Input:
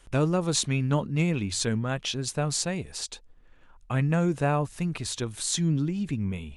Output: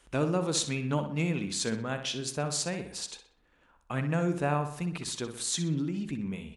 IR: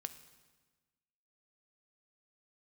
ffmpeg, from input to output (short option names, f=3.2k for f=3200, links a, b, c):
-filter_complex "[0:a]highpass=48,equalizer=f=99:w=2.4:g=-14,asplit=2[a][b];[b]adelay=62,lowpass=f=4.2k:p=1,volume=-8.5dB,asplit=2[c][d];[d]adelay=62,lowpass=f=4.2k:p=1,volume=0.51,asplit=2[e][f];[f]adelay=62,lowpass=f=4.2k:p=1,volume=0.51,asplit=2[g][h];[h]adelay=62,lowpass=f=4.2k:p=1,volume=0.51,asplit=2[i][j];[j]adelay=62,lowpass=f=4.2k:p=1,volume=0.51,asplit=2[k][l];[l]adelay=62,lowpass=f=4.2k:p=1,volume=0.51[m];[a][c][e][g][i][k][m]amix=inputs=7:normalize=0,volume=-3dB"